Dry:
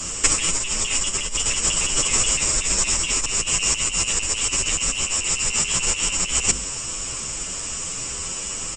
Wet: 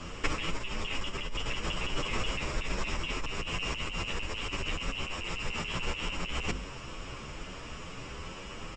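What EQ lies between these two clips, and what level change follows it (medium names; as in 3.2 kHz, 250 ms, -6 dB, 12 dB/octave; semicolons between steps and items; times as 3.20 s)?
distance through air 310 m; -4.0 dB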